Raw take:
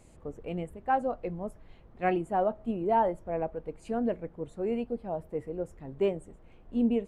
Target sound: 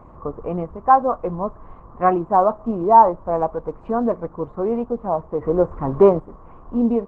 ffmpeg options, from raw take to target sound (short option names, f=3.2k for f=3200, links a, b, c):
-filter_complex "[0:a]asplit=2[a][b];[b]acompressor=threshold=-37dB:ratio=16,volume=-0.5dB[c];[a][c]amix=inputs=2:normalize=0,lowpass=f=1.1k:t=q:w=7.5,asplit=3[d][e][f];[d]afade=t=out:st=5.41:d=0.02[g];[e]acontrast=84,afade=t=in:st=5.41:d=0.02,afade=t=out:st=6.19:d=0.02[h];[f]afade=t=in:st=6.19:d=0.02[i];[g][h][i]amix=inputs=3:normalize=0,volume=5.5dB" -ar 48000 -c:a libopus -b:a 16k